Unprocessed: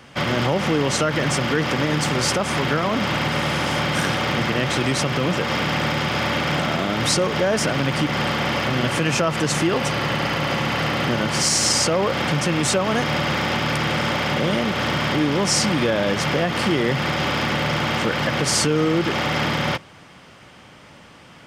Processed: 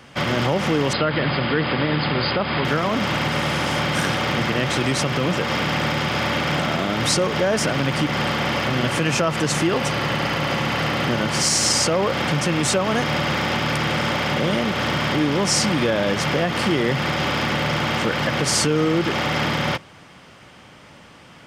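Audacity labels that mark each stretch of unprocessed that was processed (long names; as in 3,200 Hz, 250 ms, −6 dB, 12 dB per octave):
0.930000	2.650000	linear-phase brick-wall low-pass 5,100 Hz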